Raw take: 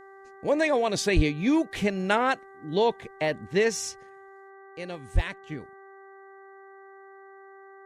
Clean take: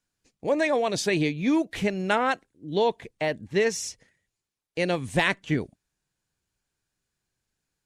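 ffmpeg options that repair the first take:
ffmpeg -i in.wav -filter_complex "[0:a]bandreject=frequency=389.6:width_type=h:width=4,bandreject=frequency=779.2:width_type=h:width=4,bandreject=frequency=1168.8:width_type=h:width=4,bandreject=frequency=1558.4:width_type=h:width=4,bandreject=frequency=1948:width_type=h:width=4,asplit=3[link_01][link_02][link_03];[link_01]afade=type=out:start_time=1.15:duration=0.02[link_04];[link_02]highpass=frequency=140:width=0.5412,highpass=frequency=140:width=1.3066,afade=type=in:start_time=1.15:duration=0.02,afade=type=out:start_time=1.27:duration=0.02[link_05];[link_03]afade=type=in:start_time=1.27:duration=0.02[link_06];[link_04][link_05][link_06]amix=inputs=3:normalize=0,asplit=3[link_07][link_08][link_09];[link_07]afade=type=out:start_time=5.14:duration=0.02[link_10];[link_08]highpass=frequency=140:width=0.5412,highpass=frequency=140:width=1.3066,afade=type=in:start_time=5.14:duration=0.02,afade=type=out:start_time=5.26:duration=0.02[link_11];[link_09]afade=type=in:start_time=5.26:duration=0.02[link_12];[link_10][link_11][link_12]amix=inputs=3:normalize=0,asetnsamples=nb_out_samples=441:pad=0,asendcmd='4.5 volume volume 11.5dB',volume=0dB" out.wav

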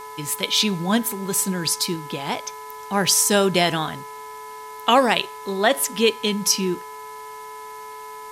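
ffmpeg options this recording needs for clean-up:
ffmpeg -i in.wav -af "bandreject=frequency=430.9:width_type=h:width=4,bandreject=frequency=861.8:width_type=h:width=4,bandreject=frequency=1292.7:width_type=h:width=4,bandreject=frequency=1723.6:width_type=h:width=4,bandreject=frequency=2154.5:width_type=h:width=4,bandreject=frequency=1000:width=30,afwtdn=0.0045" out.wav

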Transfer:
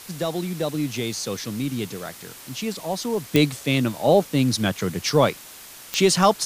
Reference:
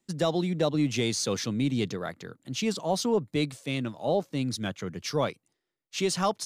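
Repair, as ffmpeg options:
ffmpeg -i in.wav -af "adeclick=threshold=4,afwtdn=0.0089,asetnsamples=nb_out_samples=441:pad=0,asendcmd='3.3 volume volume -9.5dB',volume=0dB" out.wav

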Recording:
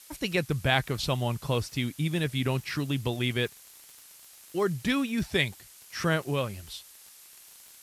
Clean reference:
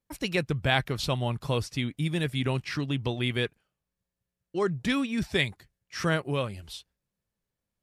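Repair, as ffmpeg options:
ffmpeg -i in.wav -af "adeclick=threshold=4,afftdn=noise_reduction=30:noise_floor=-52" out.wav

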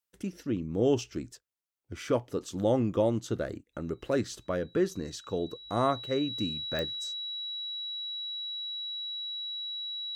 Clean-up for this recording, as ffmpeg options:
ffmpeg -i in.wav -af "adeclick=threshold=4,bandreject=frequency=3900:width=30" out.wav

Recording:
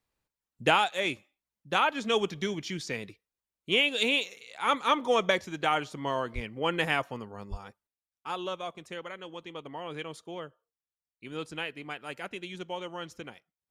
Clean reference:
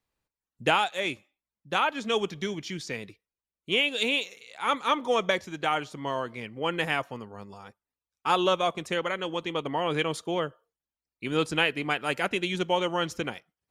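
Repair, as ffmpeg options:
ffmpeg -i in.wav -filter_complex "[0:a]asplit=3[link_01][link_02][link_03];[link_01]afade=type=out:start_time=6.34:duration=0.02[link_04];[link_02]highpass=frequency=140:width=0.5412,highpass=frequency=140:width=1.3066,afade=type=in:start_time=6.34:duration=0.02,afade=type=out:start_time=6.46:duration=0.02[link_05];[link_03]afade=type=in:start_time=6.46:duration=0.02[link_06];[link_04][link_05][link_06]amix=inputs=3:normalize=0,asplit=3[link_07][link_08][link_09];[link_07]afade=type=out:start_time=7.5:duration=0.02[link_10];[link_08]highpass=frequency=140:width=0.5412,highpass=frequency=140:width=1.3066,afade=type=in:start_time=7.5:duration=0.02,afade=type=out:start_time=7.62:duration=0.02[link_11];[link_09]afade=type=in:start_time=7.62:duration=0.02[link_12];[link_10][link_11][link_12]amix=inputs=3:normalize=0,asetnsamples=nb_out_samples=441:pad=0,asendcmd='7.87 volume volume 11dB',volume=0dB" out.wav

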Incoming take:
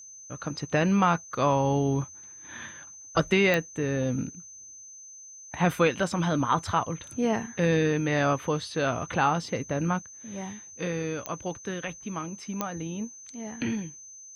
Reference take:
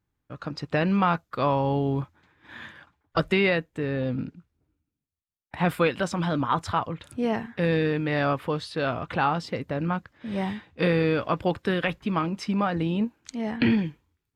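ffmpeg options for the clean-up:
ffmpeg -i in.wav -af "adeclick=threshold=4,bandreject=frequency=6200:width=30,asetnsamples=nb_out_samples=441:pad=0,asendcmd='10.02 volume volume 8.5dB',volume=0dB" out.wav

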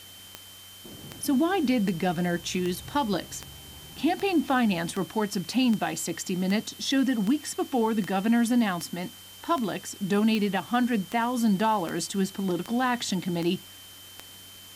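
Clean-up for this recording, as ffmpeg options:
ffmpeg -i in.wav -af "adeclick=threshold=4,bandreject=frequency=94.8:width_type=h:width=4,bandreject=frequency=189.6:width_type=h:width=4,bandreject=frequency=284.4:width_type=h:width=4,bandreject=frequency=3100:width=30,afftdn=noise_reduction=25:noise_floor=-47" out.wav

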